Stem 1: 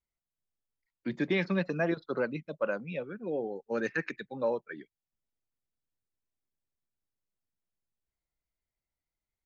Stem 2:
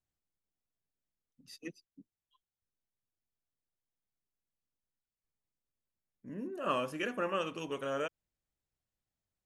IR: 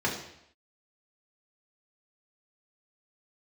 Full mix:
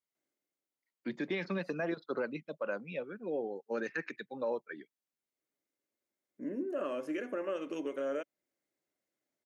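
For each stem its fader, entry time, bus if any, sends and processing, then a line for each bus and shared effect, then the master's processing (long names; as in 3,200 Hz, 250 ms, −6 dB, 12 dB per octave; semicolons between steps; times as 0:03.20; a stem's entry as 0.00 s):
−2.0 dB, 0.00 s, no send, no processing
−3.5 dB, 0.15 s, no send, graphic EQ with 15 bands 400 Hz +8 dB, 1,600 Hz +7 dB, 6,300 Hz +4 dB; downward compressor 3 to 1, threshold −39 dBFS, peak gain reduction 11.5 dB; hollow resonant body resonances 290/570/2,100 Hz, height 12 dB, ringing for 25 ms; automatic ducking −16 dB, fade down 0.65 s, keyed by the first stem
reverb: not used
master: high-pass filter 210 Hz 12 dB per octave; brickwall limiter −26 dBFS, peak gain reduction 6.5 dB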